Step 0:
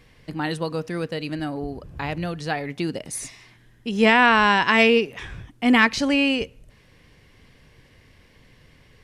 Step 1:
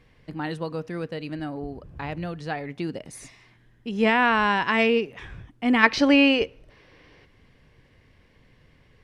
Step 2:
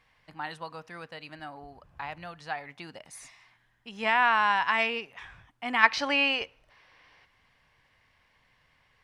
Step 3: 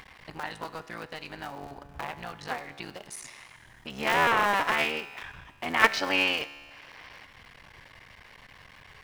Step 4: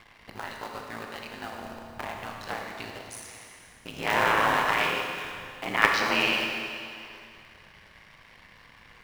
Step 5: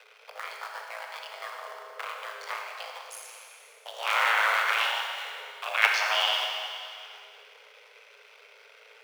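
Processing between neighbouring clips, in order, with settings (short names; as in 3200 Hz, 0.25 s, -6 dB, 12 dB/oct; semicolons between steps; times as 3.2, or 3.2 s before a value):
high shelf 4300 Hz -10 dB; spectral gain 5.83–7.25, 270–6200 Hz +8 dB; gain -3.5 dB
resonant low shelf 580 Hz -11.5 dB, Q 1.5; gain -3.5 dB
cycle switcher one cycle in 3, muted; in parallel at +0.5 dB: upward compressor, threshold -30 dBFS; on the sum: resonator 71 Hz, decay 1.8 s, harmonics all, mix 60%; gain +2.5 dB
in parallel at -9 dB: bit-crush 6-bit; on the sum: ring modulator 55 Hz; Schroeder reverb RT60 2.3 s, combs from 27 ms, DRR 1.5 dB; gain -1 dB
frequency shift +410 Hz; gain -1 dB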